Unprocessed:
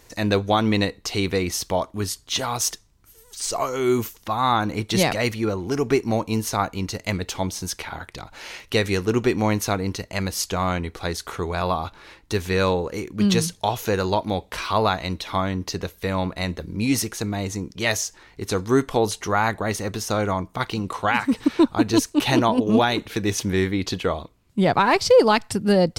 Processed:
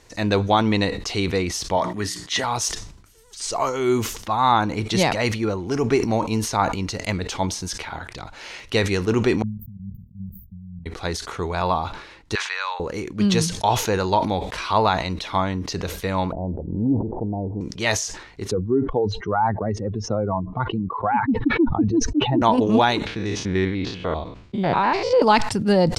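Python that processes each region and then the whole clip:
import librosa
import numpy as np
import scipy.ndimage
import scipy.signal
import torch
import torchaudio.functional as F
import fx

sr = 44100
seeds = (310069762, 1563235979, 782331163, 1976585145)

y = fx.chain(x, sr, fx.highpass(hz=110.0, slope=12),
    fx.peak_eq(hz=1900.0, db=13.0, octaves=0.24),
    fx.hum_notches(base_hz=60, count=6), at=(1.77, 2.44))
y = fx.chain(y, sr, fx.low_shelf(hz=300.0, db=-6.5),
    fx.level_steps(step_db=15),
    fx.brickwall_bandstop(low_hz=230.0, high_hz=14000.0), at=(9.42, 10.86))
y = fx.chain(y, sr, fx.highpass(hz=980.0, slope=24),
    fx.air_absorb(metres=110.0),
    fx.band_squash(depth_pct=70), at=(12.35, 12.8))
y = fx.chain(y, sr, fx.steep_lowpass(hz=900.0, slope=72),
    fx.pre_swell(db_per_s=60.0), at=(16.32, 17.61))
y = fx.chain(y, sr, fx.spec_expand(power=2.1),
    fx.spacing_loss(db_at_10k=37),
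    fx.band_squash(depth_pct=40), at=(18.51, 22.42))
y = fx.chain(y, sr, fx.spec_steps(hold_ms=100),
    fx.lowpass(hz=4500.0, slope=12), at=(23.06, 25.22))
y = scipy.signal.sosfilt(scipy.signal.butter(2, 8100.0, 'lowpass', fs=sr, output='sos'), y)
y = fx.dynamic_eq(y, sr, hz=900.0, q=4.9, threshold_db=-38.0, ratio=4.0, max_db=6)
y = fx.sustainer(y, sr, db_per_s=77.0)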